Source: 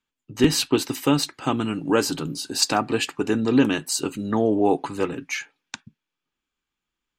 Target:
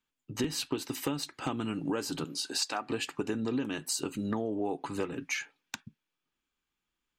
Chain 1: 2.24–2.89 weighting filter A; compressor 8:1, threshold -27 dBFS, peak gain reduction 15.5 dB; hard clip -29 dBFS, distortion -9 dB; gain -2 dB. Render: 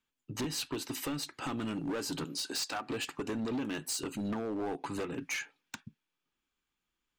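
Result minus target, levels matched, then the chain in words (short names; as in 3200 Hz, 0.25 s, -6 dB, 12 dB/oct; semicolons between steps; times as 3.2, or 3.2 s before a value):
hard clip: distortion +20 dB
2.24–2.89 weighting filter A; compressor 8:1, threshold -27 dBFS, peak gain reduction 15.5 dB; hard clip -18 dBFS, distortion -29 dB; gain -2 dB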